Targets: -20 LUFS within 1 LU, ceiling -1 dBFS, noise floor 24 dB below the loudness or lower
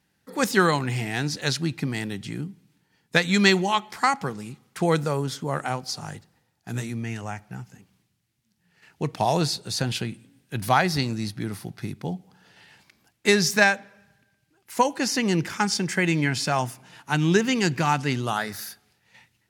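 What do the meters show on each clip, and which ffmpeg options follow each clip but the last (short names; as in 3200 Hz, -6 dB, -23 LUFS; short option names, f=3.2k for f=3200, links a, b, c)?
loudness -24.5 LUFS; peak -3.0 dBFS; loudness target -20.0 LUFS
-> -af "volume=4.5dB,alimiter=limit=-1dB:level=0:latency=1"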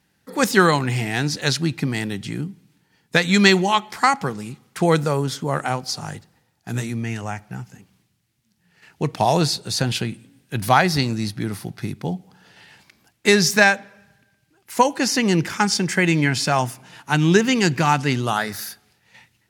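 loudness -20.5 LUFS; peak -1.0 dBFS; noise floor -67 dBFS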